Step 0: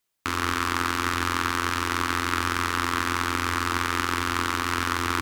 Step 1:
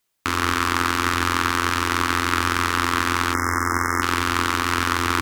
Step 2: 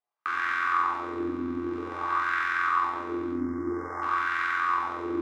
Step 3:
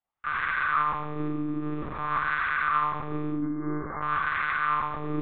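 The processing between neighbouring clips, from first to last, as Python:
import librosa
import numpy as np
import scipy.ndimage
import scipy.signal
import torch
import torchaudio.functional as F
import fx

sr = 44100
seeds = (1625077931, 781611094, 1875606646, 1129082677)

y1 = fx.spec_erase(x, sr, start_s=3.34, length_s=0.68, low_hz=2200.0, high_hz=5000.0)
y1 = y1 * 10.0 ** (4.5 / 20.0)
y2 = fx.wah_lfo(y1, sr, hz=0.51, low_hz=260.0, high_hz=1700.0, q=3.6)
y2 = fx.room_shoebox(y2, sr, seeds[0], volume_m3=750.0, walls='furnished', distance_m=3.7)
y2 = y2 * 10.0 ** (-4.0 / 20.0)
y3 = fx.lpc_monotone(y2, sr, seeds[1], pitch_hz=150.0, order=10)
y3 = y3 + 10.0 ** (-12.0 / 20.0) * np.pad(y3, (int(107 * sr / 1000.0), 0))[:len(y3)]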